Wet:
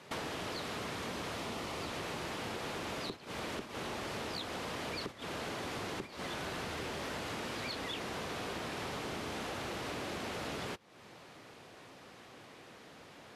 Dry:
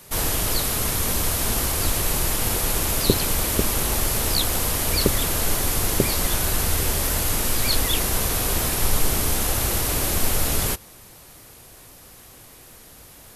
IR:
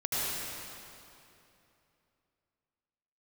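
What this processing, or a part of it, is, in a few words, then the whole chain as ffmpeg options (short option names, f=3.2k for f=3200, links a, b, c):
AM radio: -filter_complex "[0:a]highpass=170,lowpass=3.4k,acompressor=threshold=-44dB:ratio=8,asoftclip=type=tanh:threshold=-37dB,agate=range=-9dB:threshold=-49dB:ratio=16:detection=peak,asettb=1/sr,asplit=3[a][b][c];[a]atrim=end=1.384[d];[b]atrim=start=1.38:end=1.88,asetpts=PTS-STARTPTS,afade=t=in:d=0.004:c=qsin,afade=t=out:st=0.496:d=0.004:c=qsin,bandreject=f=1.6k:w=8.5[e];[c]atrim=start=1.876[f];[d][e]acrossfade=d=0.004:c1=hsin:c2=qsin[g];[g][f]acrossfade=d=0.004:c1=qsin:c2=hsin,volume=7dB"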